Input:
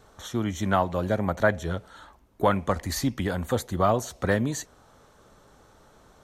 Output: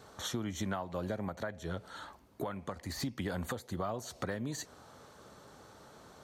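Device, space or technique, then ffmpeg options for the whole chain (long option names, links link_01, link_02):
broadcast voice chain: -af "highpass=86,deesser=0.7,acompressor=threshold=-33dB:ratio=5,equalizer=frequency=4500:width_type=o:width=0.25:gain=5,alimiter=level_in=2dB:limit=-24dB:level=0:latency=1:release=434,volume=-2dB,volume=1dB"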